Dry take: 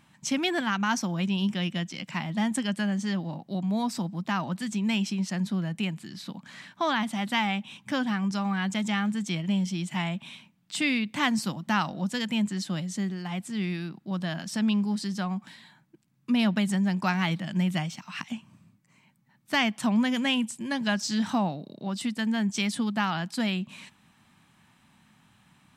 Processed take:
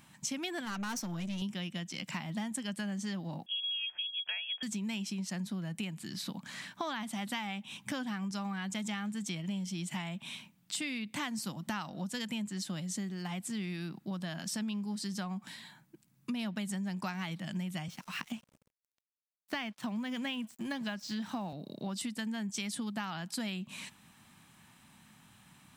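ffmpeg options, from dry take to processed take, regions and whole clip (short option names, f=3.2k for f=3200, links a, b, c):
-filter_complex "[0:a]asettb=1/sr,asplit=3[a][b][c];[a]atrim=end=0.654[d];[b]atrim=start=0.65:end=1.42,asetpts=PTS-STARTPTS,afade=t=in:d=0.004:c=qsin,afade=t=out:st=0.766:d=0.004:c=qsin,bandreject=f=50:t=h:w=6,bandreject=f=100:t=h:w=6,bandreject=f=150:t=h:w=6,aeval=exprs='(tanh(22.4*val(0)+0.3)-tanh(0.3))/22.4':c=same[e];[c]atrim=start=1.416[f];[d][e]acrossfade=d=0.004:c1=hsin:c2=qsin[g];[g][f]acrossfade=d=0.004:c1=qsin:c2=hsin,asettb=1/sr,asplit=3[h][i][j];[h]atrim=end=3.464[k];[i]atrim=start=3.46:end=4.63,asetpts=PTS-STARTPTS,afade=t=in:d=0.004:c=qsin,afade=t=out:st=1.166:d=0.004:c=qsin,aecho=1:1:1.1:0.38,atrim=end_sample=51597,lowpass=f=3k:t=q:w=0.5098,lowpass=f=3k:t=q:w=0.6013,lowpass=f=3k:t=q:w=0.9,lowpass=f=3k:t=q:w=2.563,afreqshift=-3500,lowshelf=f=470:g=-10[l];[j]atrim=start=4.626[m];[k][l]acrossfade=d=0.004:c1=hsin:c2=qsin[n];[n][m]acrossfade=d=0.004:c1=qsin:c2=hsin,asettb=1/sr,asplit=3[o][p][q];[o]atrim=end=17.884[r];[p]atrim=start=17.88:end=21.53,asetpts=PTS-STARTPTS,afade=t=in:d=0.004:c=qsin,afade=t=out:st=3.646:d=0.004:c=qsin,acrossover=split=4700[s][t];[t]acompressor=threshold=-55dB:ratio=4:attack=1:release=60[u];[s][u]amix=inputs=2:normalize=0,highpass=f=100:w=0.5412,highpass=f=100:w=1.3066,aeval=exprs='sgn(val(0))*max(abs(val(0))-0.00251,0)':c=same[v];[q]atrim=start=21.526[w];[r][v]acrossfade=d=0.004:c1=hsin:c2=qsin[x];[x][w]acrossfade=d=0.004:c1=qsin:c2=hsin,highshelf=f=6.7k:g=10,acompressor=threshold=-35dB:ratio=6"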